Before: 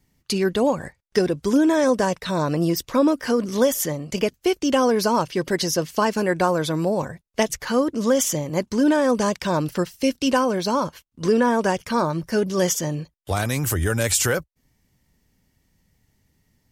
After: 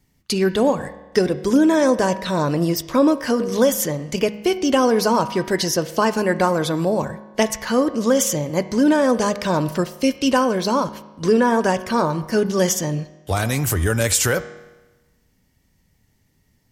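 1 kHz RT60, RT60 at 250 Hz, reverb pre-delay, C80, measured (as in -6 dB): 1.1 s, 1.1 s, 6 ms, 15.5 dB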